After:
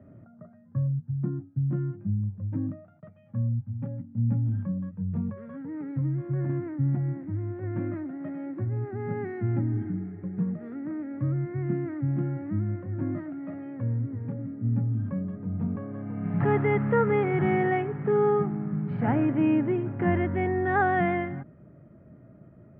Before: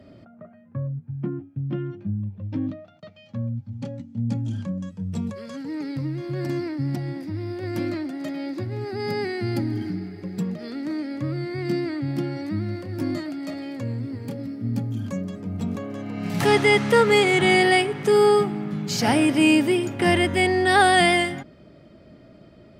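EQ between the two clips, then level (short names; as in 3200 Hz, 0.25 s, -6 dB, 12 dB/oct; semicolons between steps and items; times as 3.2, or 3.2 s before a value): ladder low-pass 2100 Hz, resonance 30%; air absorption 460 m; bell 130 Hz +9.5 dB 1.4 oct; 0.0 dB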